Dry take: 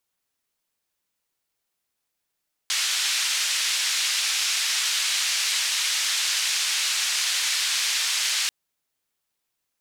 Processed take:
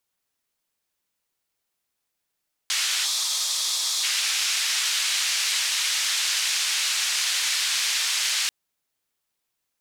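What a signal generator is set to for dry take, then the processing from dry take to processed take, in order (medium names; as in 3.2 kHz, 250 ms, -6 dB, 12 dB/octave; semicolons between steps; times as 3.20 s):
noise band 2.1–6 kHz, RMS -24.5 dBFS 5.79 s
time-frequency box 3.05–4.04 s, 1.3–3.2 kHz -11 dB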